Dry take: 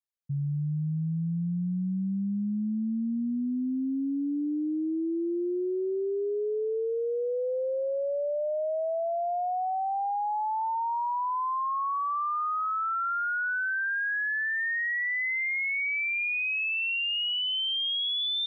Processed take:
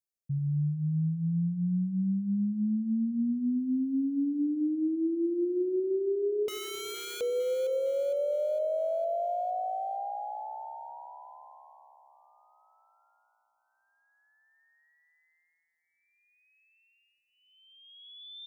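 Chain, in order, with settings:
inverse Chebyshev band-stop filter 1,100–3,000 Hz, stop band 40 dB
0:06.48–0:07.21: wrap-around overflow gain 34 dB
echo with a time of its own for lows and highs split 410 Hz, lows 88 ms, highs 459 ms, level −11 dB

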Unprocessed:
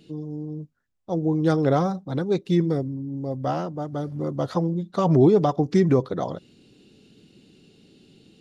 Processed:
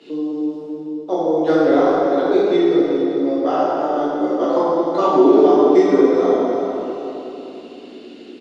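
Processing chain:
Butterworth high-pass 270 Hz 36 dB per octave
transient designer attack +3 dB, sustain −10 dB
bit reduction 12 bits
high-frequency loss of the air 92 metres
repeating echo 387 ms, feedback 34%, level −13 dB
convolution reverb RT60 2.2 s, pre-delay 9 ms, DRR −10.5 dB
multiband upward and downward compressor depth 40%
level −1.5 dB

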